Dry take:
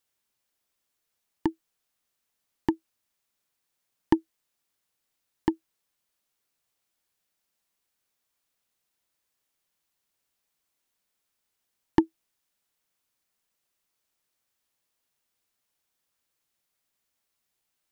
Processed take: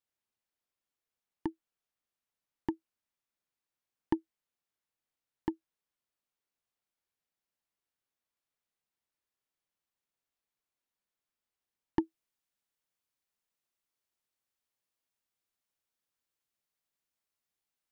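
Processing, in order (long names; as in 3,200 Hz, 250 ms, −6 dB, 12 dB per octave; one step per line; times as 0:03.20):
high-shelf EQ 4,000 Hz −7.5 dB, from 0:12.00 −2 dB
level −8.5 dB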